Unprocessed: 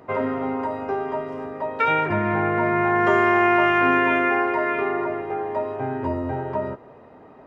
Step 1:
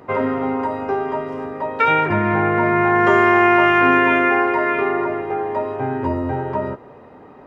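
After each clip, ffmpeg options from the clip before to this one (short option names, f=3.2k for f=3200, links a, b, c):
-af "bandreject=f=650:w=12,volume=4.5dB"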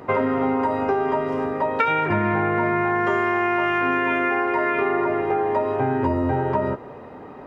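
-af "acompressor=threshold=-21dB:ratio=6,volume=3.5dB"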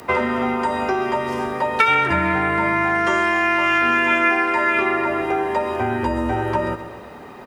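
-af "aecho=1:1:129|258|387|516|645|774:0.211|0.116|0.0639|0.0352|0.0193|0.0106,afreqshift=-21,crystalizer=i=8:c=0,volume=-1.5dB"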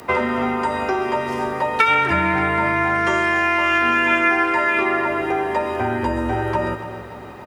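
-af "aecho=1:1:289|578|867|1156|1445|1734:0.2|0.118|0.0695|0.041|0.0242|0.0143"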